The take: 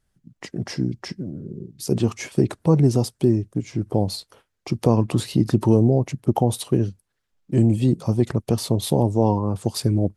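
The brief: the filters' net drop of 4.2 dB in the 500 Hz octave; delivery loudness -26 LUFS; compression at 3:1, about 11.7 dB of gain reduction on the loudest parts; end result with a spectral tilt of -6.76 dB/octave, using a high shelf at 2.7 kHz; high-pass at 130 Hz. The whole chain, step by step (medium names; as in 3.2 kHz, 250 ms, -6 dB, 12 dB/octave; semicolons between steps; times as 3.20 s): high-pass 130 Hz; peaking EQ 500 Hz -5.5 dB; treble shelf 2.7 kHz -5 dB; compression 3:1, threshold -31 dBFS; trim +8.5 dB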